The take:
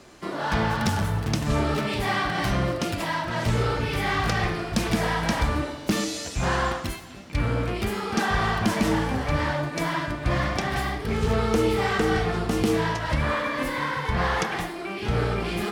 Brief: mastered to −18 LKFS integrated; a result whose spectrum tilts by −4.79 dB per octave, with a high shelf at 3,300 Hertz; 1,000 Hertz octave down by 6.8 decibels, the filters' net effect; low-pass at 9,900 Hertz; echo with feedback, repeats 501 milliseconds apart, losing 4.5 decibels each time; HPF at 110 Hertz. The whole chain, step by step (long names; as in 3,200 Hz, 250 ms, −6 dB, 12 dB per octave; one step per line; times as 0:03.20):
high-pass filter 110 Hz
low-pass filter 9,900 Hz
parametric band 1,000 Hz −8.5 dB
high-shelf EQ 3,300 Hz −3.5 dB
repeating echo 501 ms, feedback 60%, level −4.5 dB
level +8.5 dB